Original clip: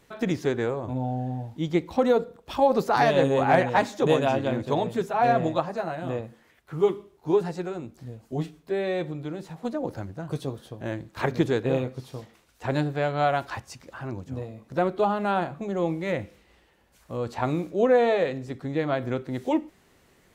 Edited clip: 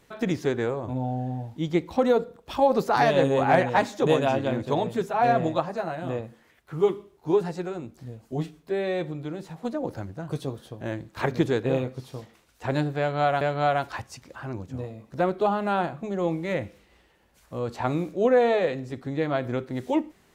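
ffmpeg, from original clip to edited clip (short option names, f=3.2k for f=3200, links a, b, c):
-filter_complex "[0:a]asplit=2[a][b];[a]atrim=end=13.412[c];[b]atrim=start=12.988[d];[c][d]acrossfade=d=0.004:c1=hsin:c2=hsin"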